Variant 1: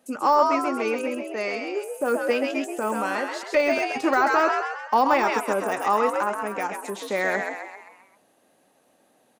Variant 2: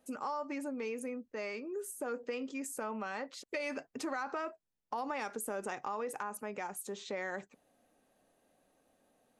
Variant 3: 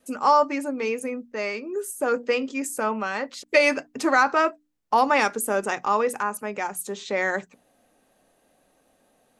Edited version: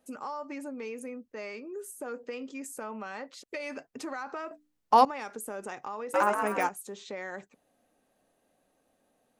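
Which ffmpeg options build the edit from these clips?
-filter_complex "[1:a]asplit=3[a][b][c];[a]atrim=end=4.512[d];[2:a]atrim=start=4.508:end=5.052[e];[b]atrim=start=5.048:end=6.142[f];[0:a]atrim=start=6.138:end=6.692[g];[c]atrim=start=6.688[h];[d][e]acrossfade=d=0.004:c1=hsin:c2=hsin[i];[i][f]acrossfade=d=0.004:c1=hsin:c2=hsin[j];[j][g]acrossfade=d=0.004:c1=hsin:c2=hsin[k];[k][h]acrossfade=d=0.004:c1=hsin:c2=hsin"

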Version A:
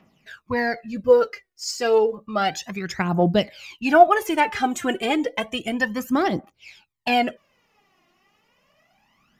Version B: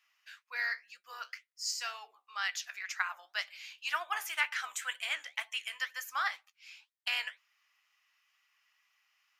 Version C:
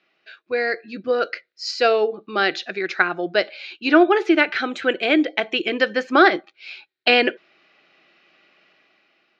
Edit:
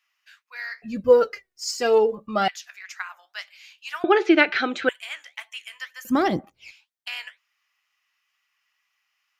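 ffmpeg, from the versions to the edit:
-filter_complex "[0:a]asplit=2[a][b];[1:a]asplit=4[c][d][e][f];[c]atrim=end=0.822[g];[a]atrim=start=0.818:end=2.482[h];[d]atrim=start=2.478:end=4.042[i];[2:a]atrim=start=4.038:end=4.892[j];[e]atrim=start=4.888:end=6.052[k];[b]atrim=start=6.048:end=6.712[l];[f]atrim=start=6.708[m];[g][h]acrossfade=d=0.004:c1=hsin:c2=hsin[n];[n][i]acrossfade=d=0.004:c1=hsin:c2=hsin[o];[o][j]acrossfade=d=0.004:c1=hsin:c2=hsin[p];[p][k]acrossfade=d=0.004:c1=hsin:c2=hsin[q];[q][l]acrossfade=d=0.004:c1=hsin:c2=hsin[r];[r][m]acrossfade=d=0.004:c1=hsin:c2=hsin"

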